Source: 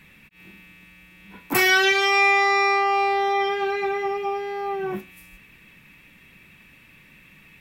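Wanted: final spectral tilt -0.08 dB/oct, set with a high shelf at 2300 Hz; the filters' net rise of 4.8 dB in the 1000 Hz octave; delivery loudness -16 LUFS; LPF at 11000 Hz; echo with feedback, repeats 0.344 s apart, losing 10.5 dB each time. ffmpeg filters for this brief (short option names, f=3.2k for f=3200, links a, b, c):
-af "lowpass=11k,equalizer=f=1k:t=o:g=8,highshelf=f=2.3k:g=-6.5,aecho=1:1:344|688|1032:0.299|0.0896|0.0269,volume=2.5dB"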